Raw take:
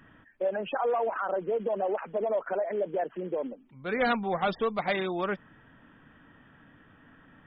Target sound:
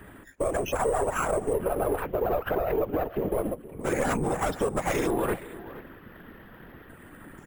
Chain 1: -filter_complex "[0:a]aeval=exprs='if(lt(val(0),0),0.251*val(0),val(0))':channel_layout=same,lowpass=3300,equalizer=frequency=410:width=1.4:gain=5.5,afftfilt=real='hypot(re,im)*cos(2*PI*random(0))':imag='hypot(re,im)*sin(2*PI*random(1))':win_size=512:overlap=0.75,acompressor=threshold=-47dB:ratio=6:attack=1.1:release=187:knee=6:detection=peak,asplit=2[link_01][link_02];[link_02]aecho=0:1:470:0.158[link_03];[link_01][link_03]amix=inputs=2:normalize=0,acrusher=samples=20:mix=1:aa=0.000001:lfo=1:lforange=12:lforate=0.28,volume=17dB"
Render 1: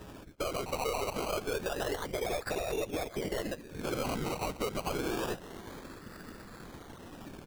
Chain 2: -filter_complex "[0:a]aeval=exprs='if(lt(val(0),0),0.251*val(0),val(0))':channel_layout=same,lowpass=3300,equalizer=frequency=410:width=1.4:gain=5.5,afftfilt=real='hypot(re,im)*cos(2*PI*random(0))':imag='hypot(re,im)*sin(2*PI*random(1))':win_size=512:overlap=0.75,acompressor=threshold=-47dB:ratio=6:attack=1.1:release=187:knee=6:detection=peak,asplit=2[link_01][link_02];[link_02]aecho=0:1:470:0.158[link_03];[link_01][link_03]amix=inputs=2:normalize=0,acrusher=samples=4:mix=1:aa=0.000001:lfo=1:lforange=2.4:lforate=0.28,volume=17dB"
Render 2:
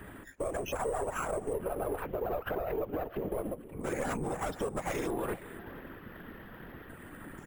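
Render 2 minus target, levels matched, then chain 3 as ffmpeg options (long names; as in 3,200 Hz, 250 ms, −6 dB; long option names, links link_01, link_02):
downward compressor: peak gain reduction +7.5 dB
-filter_complex "[0:a]aeval=exprs='if(lt(val(0),0),0.251*val(0),val(0))':channel_layout=same,lowpass=3300,equalizer=frequency=410:width=1.4:gain=5.5,afftfilt=real='hypot(re,im)*cos(2*PI*random(0))':imag='hypot(re,im)*sin(2*PI*random(1))':win_size=512:overlap=0.75,acompressor=threshold=-38dB:ratio=6:attack=1.1:release=187:knee=6:detection=peak,asplit=2[link_01][link_02];[link_02]aecho=0:1:470:0.158[link_03];[link_01][link_03]amix=inputs=2:normalize=0,acrusher=samples=4:mix=1:aa=0.000001:lfo=1:lforange=2.4:lforate=0.28,volume=17dB"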